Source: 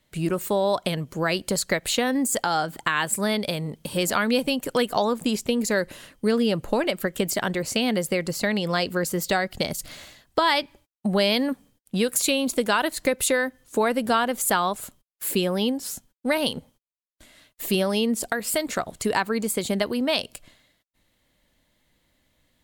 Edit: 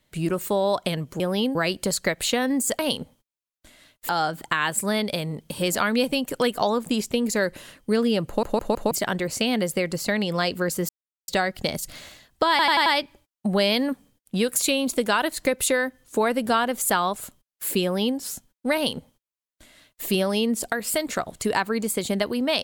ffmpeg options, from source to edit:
-filter_complex "[0:a]asplit=14[a][b][c][d][e][f][g][h][i][j][k][l][m][n];[a]atrim=end=1.202[o];[b]atrim=start=15.428:end=15.782[p];[c]atrim=start=1.198:end=2.442[q];[d]atrim=start=16.348:end=17.652[r];[e]atrim=start=2.438:end=6.782[s];[f]atrim=start=6.618:end=6.782[t];[g]atrim=start=6.618:end=6.782[u];[h]atrim=start=6.618:end=6.782[v];[i]atrim=start=7.258:end=9.24,asetpts=PTS-STARTPTS,afade=t=out:st=1.978:d=0.004:c=hsin,apad=pad_dur=0.39[w];[j]atrim=start=9.24:end=10.552,asetpts=PTS-STARTPTS,afade=t=in:d=0.004:c=hsin[x];[k]atrim=start=10.458:end=10.552[y];[l]atrim=start=10.458:end=10.552[z];[m]atrim=start=10.458:end=10.552[aa];[n]atrim=start=10.458[ab];[o][p]acrossfade=d=0.004:c1=hsin:c2=hsin[ac];[ac][q]acrossfade=d=0.004:c1=hsin:c2=hsin[ad];[ad][r]acrossfade=d=0.004:c1=hsin:c2=hsin[ae];[ae][s]acrossfade=d=0.004:c1=hsin:c2=hsin[af];[af][t]acrossfade=d=0.004:c1=hsin:c2=hsin[ag];[ag][u]acrossfade=d=0.004:c1=hsin:c2=hsin[ah];[ah][v]acrossfade=d=0.004:c1=hsin:c2=hsin[ai];[w][x]concat=n=2:v=0:a=1[aj];[ai][aj]acrossfade=d=0.004:c1=hsin:c2=hsin[ak];[ak][y]acrossfade=d=0.004:c1=hsin:c2=hsin[al];[al][z]acrossfade=d=0.004:c1=hsin:c2=hsin[am];[am][aa]acrossfade=d=0.004:c1=hsin:c2=hsin[an];[an][ab]acrossfade=d=0.004:c1=hsin:c2=hsin"

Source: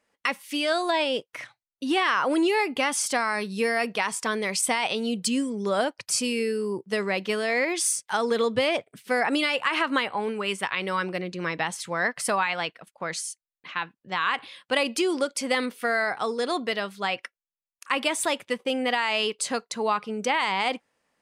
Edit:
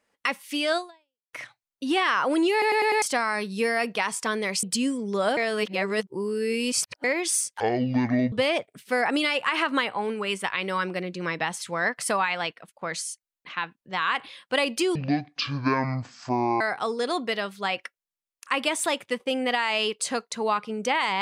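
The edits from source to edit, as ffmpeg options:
-filter_complex "[0:a]asplit=14[a][b][c][d][e][f][g][h][i][j][k][l][m][n];[a]atrim=end=1.33,asetpts=PTS-STARTPTS,afade=t=out:st=0.77:d=0.56:c=exp[o];[b]atrim=start=1.33:end=2.622,asetpts=PTS-STARTPTS,afade=t=in:d=0.004:c=hsin[p];[c]atrim=start=2.518:end=2.622[q];[d]atrim=start=2.518:end=2.622[r];[e]atrim=start=2.518:end=2.622[s];[f]atrim=start=2.518:end=2.622[t];[g]atrim=start=3.018:end=4.632[u];[h]atrim=start=5.148:end=5.892[v];[i]atrim=start=5.888:end=7.562,asetpts=PTS-STARTPTS,areverse[w];[j]atrim=start=7.558:end=8.124[x];[k]atrim=start=8.12:end=8.51,asetpts=PTS-STARTPTS,asetrate=23814,aresample=44100[y];[l]atrim=start=8.506:end=15.144[z];[m]atrim=start=15.14:end=16,asetpts=PTS-STARTPTS,asetrate=22932,aresample=44100[aa];[n]atrim=start=15.996[ab];[o][p]concat=n=2:v=0:a=1[ac];[ac][q]acrossfade=d=0.004:c1=hsin:c2=hsin[ad];[ad][r]acrossfade=d=0.004:c1=hsin:c2=hsin[ae];[ae][s]acrossfade=d=0.004:c1=hsin:c2=hsin[af];[af][t]acrossfade=d=0.004:c1=hsin:c2=hsin[ag];[ag][u]acrossfade=d=0.004:c1=hsin:c2=hsin[ah];[ah][v]acrossfade=d=0.004:c1=hsin:c2=hsin[ai];[ai][w]acrossfade=d=0.004:c1=hsin:c2=hsin[aj];[aj][x]acrossfade=d=0.004:c1=hsin:c2=hsin[ak];[ak][y]acrossfade=d=0.004:c1=hsin:c2=hsin[al];[al][z]acrossfade=d=0.004:c1=hsin:c2=hsin[am];[am][aa]acrossfade=d=0.004:c1=hsin:c2=hsin[an];[an][ab]acrossfade=d=0.004:c1=hsin:c2=hsin"

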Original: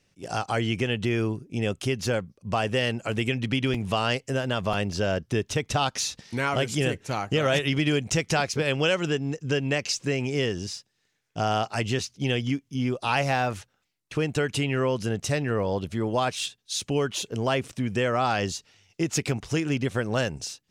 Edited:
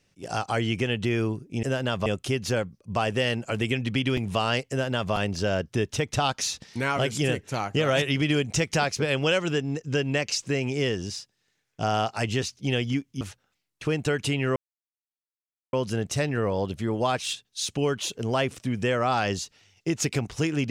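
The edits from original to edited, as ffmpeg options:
-filter_complex "[0:a]asplit=5[a][b][c][d][e];[a]atrim=end=1.632[f];[b]atrim=start=4.268:end=4.702[g];[c]atrim=start=1.628:end=12.782[h];[d]atrim=start=13.508:end=14.86,asetpts=PTS-STARTPTS,afade=t=out:st=1.348:d=0.004:c=hsin,apad=pad_dur=1.17[i];[e]atrim=start=14.86,asetpts=PTS-STARTPTS,afade=t=in:d=0.004:c=hsin[j];[f][g]acrossfade=d=0.004:c1=hsin:c2=hsin[k];[k][h]acrossfade=d=0.004:c1=hsin:c2=hsin[l];[i][j]concat=n=2:v=0:a=1[m];[l][m]acrossfade=d=0.004:c1=hsin:c2=hsin"

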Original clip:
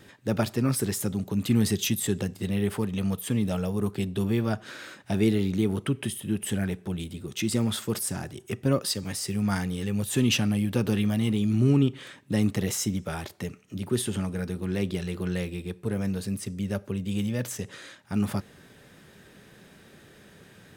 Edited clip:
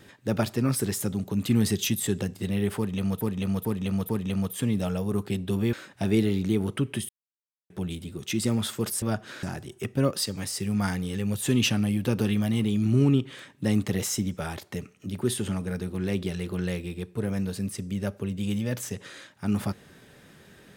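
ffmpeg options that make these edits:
-filter_complex "[0:a]asplit=9[a][b][c][d][e][f][g][h][i];[a]atrim=end=3.212[j];[b]atrim=start=2.768:end=3.212[k];[c]atrim=start=2.768:end=3.212[l];[d]atrim=start=2.768:end=4.412[m];[e]atrim=start=4.818:end=6.18,asetpts=PTS-STARTPTS,afade=t=out:st=1.358:d=0.004:c=hsin[n];[f]atrim=start=6.18:end=6.79,asetpts=PTS-STARTPTS,volume=0[o];[g]atrim=start=6.79:end=8.112,asetpts=PTS-STARTPTS,afade=t=in:d=0.004:c=hsin[p];[h]atrim=start=4.408:end=4.822[q];[i]atrim=start=8.108[r];[j][k]acrossfade=d=0.004:c1=hsin:c2=hsin[s];[s][l]acrossfade=d=0.004:c1=hsin:c2=hsin[t];[t][m]acrossfade=d=0.004:c1=hsin:c2=hsin[u];[n][o][p]concat=n=3:v=0:a=1[v];[u][v]acrossfade=d=0.004:c1=hsin:c2=hsin[w];[w][q]acrossfade=d=0.004:c1=hsin:c2=hsin[x];[x][r]acrossfade=d=0.004:c1=hsin:c2=hsin"

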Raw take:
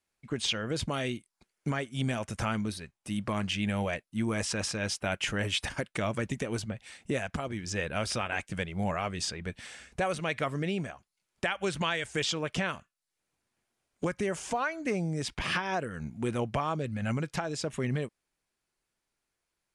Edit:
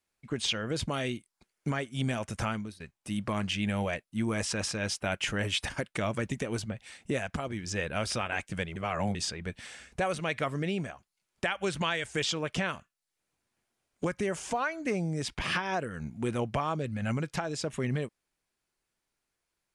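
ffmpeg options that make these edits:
-filter_complex "[0:a]asplit=4[a][b][c][d];[a]atrim=end=2.8,asetpts=PTS-STARTPTS,afade=t=out:st=2.44:d=0.36:silence=0.11885[e];[b]atrim=start=2.8:end=8.762,asetpts=PTS-STARTPTS,afade=t=in:d=0.004:c=hsin:silence=0.11885[f];[c]atrim=start=8.758:end=9.152,asetpts=PTS-STARTPTS,areverse[g];[d]atrim=start=9.148[h];[e][f]concat=n=2:v=0:a=1[i];[i][g]acrossfade=d=0.004:c1=hsin:c2=hsin[j];[j][h]acrossfade=d=0.004:c1=hsin:c2=hsin"

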